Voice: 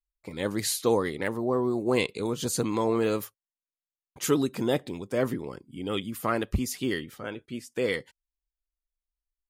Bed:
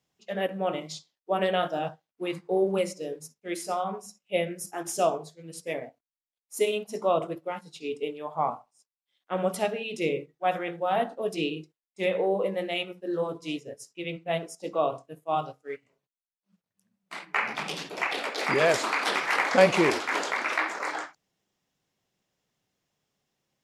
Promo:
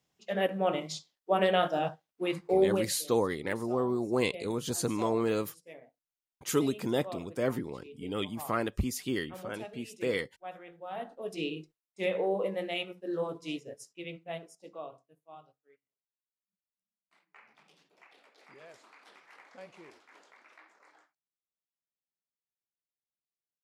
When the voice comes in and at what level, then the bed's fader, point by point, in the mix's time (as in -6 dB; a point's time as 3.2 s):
2.25 s, -3.5 dB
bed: 2.72 s 0 dB
3 s -17 dB
10.73 s -17 dB
11.53 s -4 dB
13.81 s -4 dB
15.92 s -30.5 dB